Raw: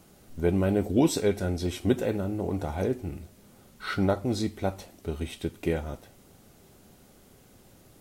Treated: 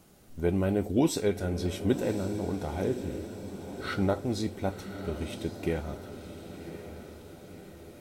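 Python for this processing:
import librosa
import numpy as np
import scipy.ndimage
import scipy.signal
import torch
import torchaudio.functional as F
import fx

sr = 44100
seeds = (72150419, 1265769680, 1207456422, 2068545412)

y = fx.echo_diffused(x, sr, ms=1081, feedback_pct=56, wet_db=-10.5)
y = F.gain(torch.from_numpy(y), -2.5).numpy()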